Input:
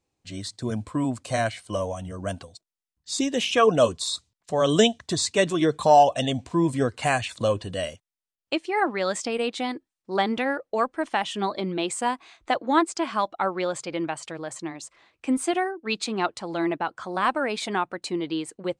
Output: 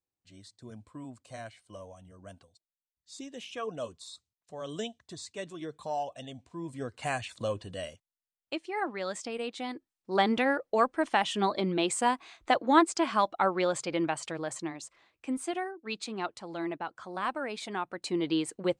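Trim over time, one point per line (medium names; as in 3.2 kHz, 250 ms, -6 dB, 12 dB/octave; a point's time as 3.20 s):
6.56 s -18 dB
7.10 s -9 dB
9.57 s -9 dB
10.27 s -1 dB
14.47 s -1 dB
15.31 s -9 dB
17.75 s -9 dB
18.29 s 0 dB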